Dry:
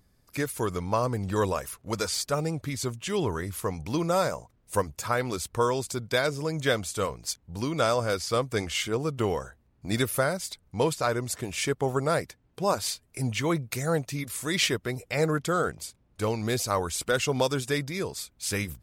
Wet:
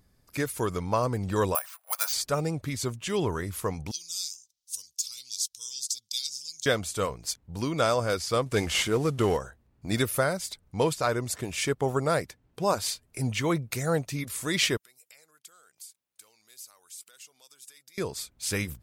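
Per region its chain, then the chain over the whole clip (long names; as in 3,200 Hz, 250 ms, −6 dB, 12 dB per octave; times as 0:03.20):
0:01.55–0:02.13: elliptic high-pass filter 680 Hz, stop band 60 dB + notch filter 2,000 Hz, Q 28 + bad sample-rate conversion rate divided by 4×, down filtered, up zero stuff
0:03.91–0:06.66: inverse Chebyshev high-pass filter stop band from 1,800 Hz + parametric band 5,800 Hz +10.5 dB 0.79 octaves
0:08.46–0:09.37: variable-slope delta modulation 64 kbit/s + leveller curve on the samples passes 1
0:14.77–0:17.98: downward compressor 4 to 1, threshold −42 dBFS + first difference
whole clip: no processing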